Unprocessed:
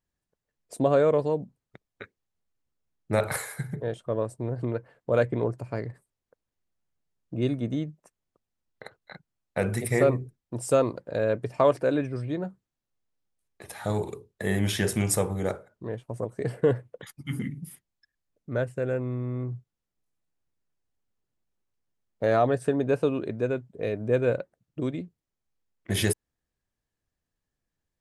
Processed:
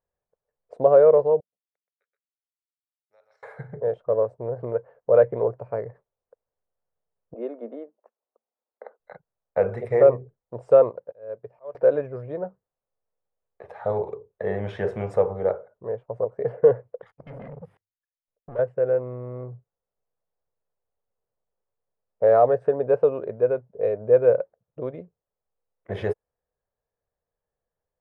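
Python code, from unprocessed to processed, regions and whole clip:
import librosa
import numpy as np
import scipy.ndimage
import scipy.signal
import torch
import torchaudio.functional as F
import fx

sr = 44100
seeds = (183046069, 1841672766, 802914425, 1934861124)

y = fx.chain(x, sr, fx.bandpass_q(hz=5500.0, q=14.0),
    fx.echo_single(ms=125, db=-6.5), at=(1.4, 3.43))
y = fx.chain(y, sr, fx.cheby_ripple_highpass(hz=220.0, ripple_db=3),
    fx.high_shelf(hz=3400.0, db=-10.0), at=(7.34, 9.0))
y = fx.chain(y, sr, fx.auto_swell(attack_ms=711.0),
    fx.upward_expand(threshold_db=-45.0, expansion=1.5), at=(10.86, 11.75))
y = fx.chain(y, sr, fx.level_steps(step_db=20),
    fx.hum_notches(base_hz=50, count=2),
    fx.leveller(passes=3), at=(17.01, 18.59))
y = scipy.signal.sosfilt(scipy.signal.butter(2, 1100.0, 'lowpass', fs=sr, output='sos'), y)
y = fx.low_shelf_res(y, sr, hz=380.0, db=-7.5, q=3.0)
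y = y * librosa.db_to_amplitude(3.0)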